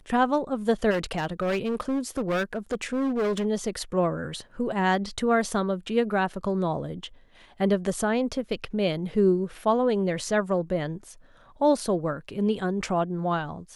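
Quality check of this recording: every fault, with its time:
0.9–3.46 clipped -22.5 dBFS

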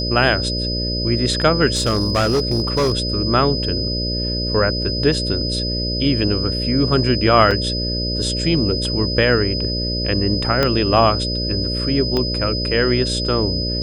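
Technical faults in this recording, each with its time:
buzz 60 Hz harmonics 10 -24 dBFS
tone 5000 Hz -23 dBFS
1.73–2.93 clipped -13 dBFS
7.51 gap 3.4 ms
10.63 pop -3 dBFS
12.17 pop -9 dBFS

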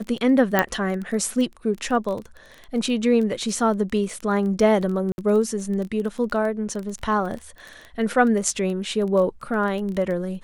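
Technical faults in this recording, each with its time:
crackle 14/s -28 dBFS
0.59 pop -4 dBFS
5.12–5.18 gap 61 ms

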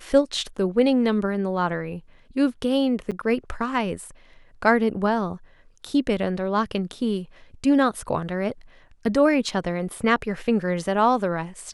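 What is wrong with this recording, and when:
3.11–3.12 gap 7.2 ms

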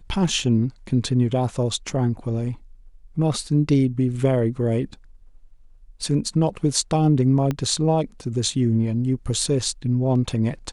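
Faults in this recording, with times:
7.51 pop -12 dBFS

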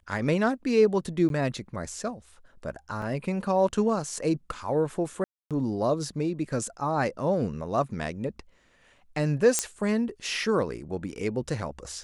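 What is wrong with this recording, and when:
1.29–1.3 gap
3.02 gap 2.4 ms
5.24–5.51 gap 0.267 s
9.59 pop -8 dBFS

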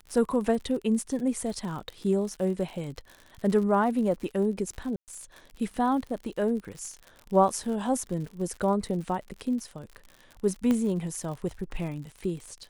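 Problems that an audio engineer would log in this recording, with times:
crackle 72/s -36 dBFS
1.09 gap 3.8 ms
4.96–5.08 gap 0.118 s
10.71 pop -15 dBFS

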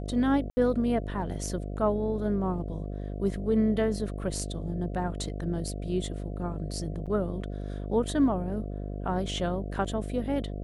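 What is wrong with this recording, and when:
buzz 50 Hz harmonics 14 -35 dBFS
0.5–0.57 gap 70 ms
7.06–7.07 gap 6.4 ms

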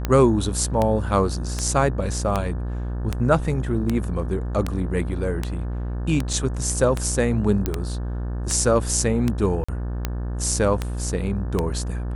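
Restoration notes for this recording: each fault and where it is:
buzz 60 Hz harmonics 30 -27 dBFS
tick 78 rpm -9 dBFS
6.33 gap 3.5 ms
7.66 pop -9 dBFS
9.64–9.69 gap 45 ms

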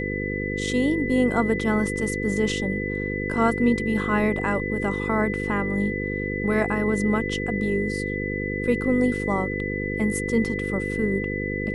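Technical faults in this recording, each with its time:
buzz 50 Hz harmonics 10 -29 dBFS
tone 2000 Hz -30 dBFS

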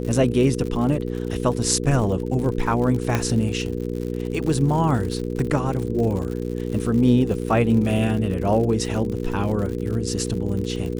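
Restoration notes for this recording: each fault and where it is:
crackle 95/s -29 dBFS
hum 60 Hz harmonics 8 -27 dBFS
3.15 pop -7 dBFS

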